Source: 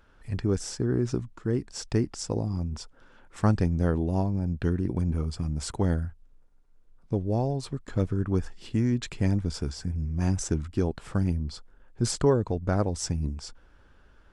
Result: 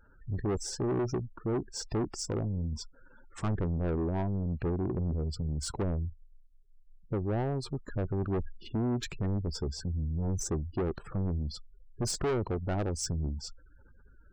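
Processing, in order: dynamic bell 370 Hz, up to +6 dB, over -44 dBFS, Q 4.5; spectral gate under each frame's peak -20 dB strong; saturation -26.5 dBFS, distortion -7 dB

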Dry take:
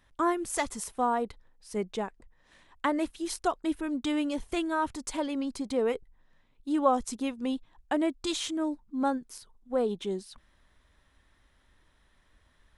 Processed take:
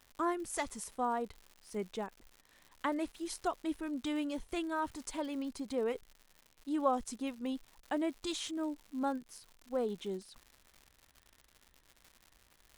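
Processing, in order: crackle 170 per s -39 dBFS; trim -6.5 dB

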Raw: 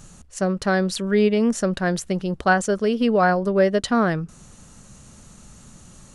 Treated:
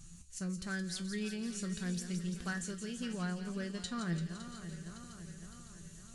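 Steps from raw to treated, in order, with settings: backward echo that repeats 280 ms, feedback 74%, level -12 dB; amplifier tone stack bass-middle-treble 6-0-2; in parallel at 0 dB: compression, threshold -51 dBFS, peak gain reduction 16 dB; on the sum: wow and flutter 27 cents; feedback comb 170 Hz, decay 0.21 s, harmonics all, mix 80%; on a send: feedback echo behind a high-pass 170 ms, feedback 69%, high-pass 3.3 kHz, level -7 dB; on the sum: trim +8.5 dB

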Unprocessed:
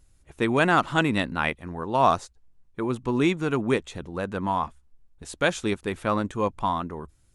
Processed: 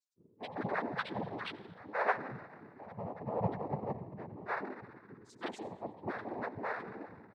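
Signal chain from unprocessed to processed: bands offset in time highs, lows 170 ms, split 480 Hz; ring modulator 220 Hz; loudest bins only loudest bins 2; on a send at -12 dB: reverberation RT60 1.8 s, pre-delay 77 ms; on the sum: noise-vocoded speech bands 6; trim +1 dB

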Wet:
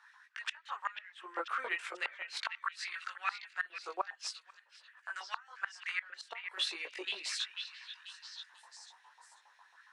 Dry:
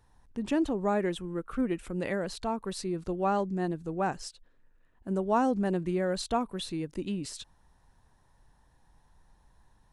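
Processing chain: LFO high-pass saw up 7.3 Hz 880–2500 Hz; compression 3:1, threshold -33 dBFS, peak gain reduction 11.5 dB; chorus voices 6, 0.24 Hz, delay 20 ms, depth 4.1 ms; LFO high-pass square 0.41 Hz 340–1500 Hz; three-band isolator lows -19 dB, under 440 Hz, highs -17 dB, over 6.8 kHz; inverted gate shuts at -30 dBFS, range -26 dB; repeats whose band climbs or falls 491 ms, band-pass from 2.5 kHz, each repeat 0.7 oct, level -6.5 dB; trim +9 dB

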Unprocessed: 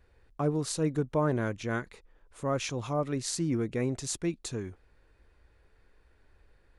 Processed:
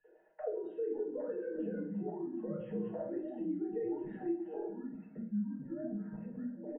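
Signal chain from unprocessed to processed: formants replaced by sine waves; ever faster or slower copies 379 ms, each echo -6 st, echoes 2, each echo -6 dB; compression 2.5:1, threshold -41 dBFS, peak gain reduction 13.5 dB; boxcar filter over 38 samples; peaking EQ 290 Hz -8 dB 0.21 oct; comb 6.4 ms, depth 69%; feedback delay 128 ms, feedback 37%, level -17 dB; simulated room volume 320 m³, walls furnished, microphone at 4.5 m; three bands compressed up and down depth 40%; trim -5.5 dB

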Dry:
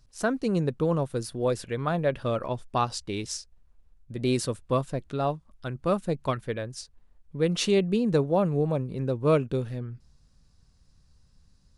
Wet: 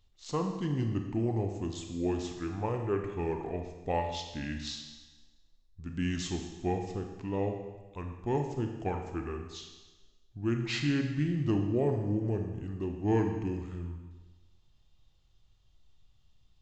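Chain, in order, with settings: wide varispeed 0.709×; Schroeder reverb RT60 1.2 s, combs from 27 ms, DRR 4 dB; trim -6.5 dB

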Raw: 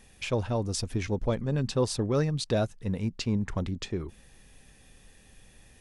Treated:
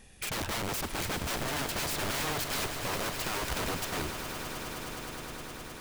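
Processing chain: integer overflow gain 30 dB; echo with a slow build-up 104 ms, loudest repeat 8, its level -14 dB; trim +1 dB

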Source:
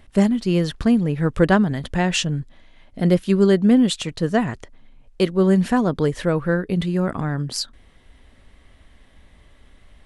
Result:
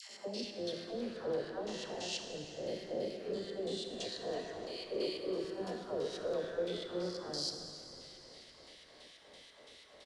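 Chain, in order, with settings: reverse spectral sustain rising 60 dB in 1.49 s; bass shelf 430 Hz -5.5 dB; compression 6:1, threshold -31 dBFS, peak gain reduction 18.5 dB; peak limiter -26 dBFS, peak gain reduction 11.5 dB; LFO band-pass square 3 Hz 490–4700 Hz; phase dispersion lows, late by 113 ms, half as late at 780 Hz; on a send: frequency-shifting echo 313 ms, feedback 59%, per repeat -96 Hz, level -19 dB; on the sum: plate-style reverb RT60 3 s, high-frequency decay 0.8×, DRR 4 dB; tape noise reduction on one side only encoder only; trim +3 dB

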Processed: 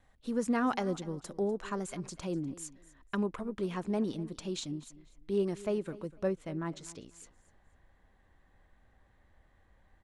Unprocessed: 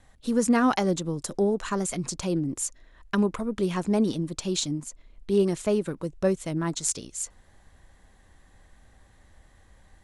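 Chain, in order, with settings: tone controls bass -2 dB, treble -7 dB, from 6.27 s treble -15 dB; feedback delay 247 ms, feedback 26%, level -19 dB; trim -7.5 dB

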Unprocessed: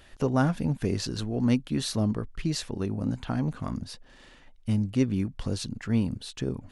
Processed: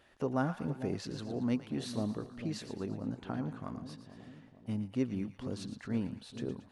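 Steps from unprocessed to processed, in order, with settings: high-pass 240 Hz 6 dB/octave; treble shelf 2.5 kHz -9.5 dB; two-band feedback delay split 770 Hz, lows 452 ms, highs 114 ms, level -11 dB; trim -5 dB

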